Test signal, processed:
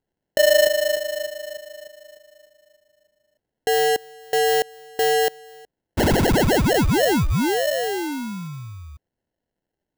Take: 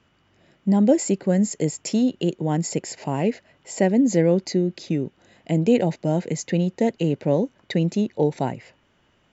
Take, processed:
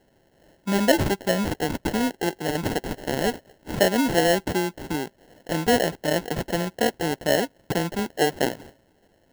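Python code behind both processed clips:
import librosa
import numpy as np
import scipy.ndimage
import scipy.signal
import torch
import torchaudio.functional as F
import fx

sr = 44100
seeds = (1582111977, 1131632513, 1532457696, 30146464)

y = fx.highpass(x, sr, hz=850.0, slope=6)
y = fx.sample_hold(y, sr, seeds[0], rate_hz=1200.0, jitter_pct=0)
y = y * librosa.db_to_amplitude(6.0)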